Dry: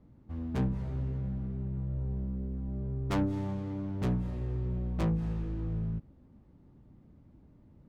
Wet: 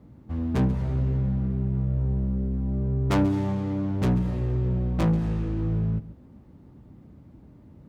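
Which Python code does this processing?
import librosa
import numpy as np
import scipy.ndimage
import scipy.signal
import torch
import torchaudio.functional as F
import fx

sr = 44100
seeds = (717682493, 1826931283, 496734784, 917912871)

p1 = scipy.signal.sosfilt(scipy.signal.butter(2, 50.0, 'highpass', fs=sr, output='sos'), x)
p2 = 10.0 ** (-29.5 / 20.0) * (np.abs((p1 / 10.0 ** (-29.5 / 20.0) + 3.0) % 4.0 - 2.0) - 1.0)
p3 = p1 + (p2 * 10.0 ** (-10.0 / 20.0))
p4 = p3 + 10.0 ** (-16.5 / 20.0) * np.pad(p3, (int(137 * sr / 1000.0), 0))[:len(p3)]
y = p4 * 10.0 ** (6.5 / 20.0)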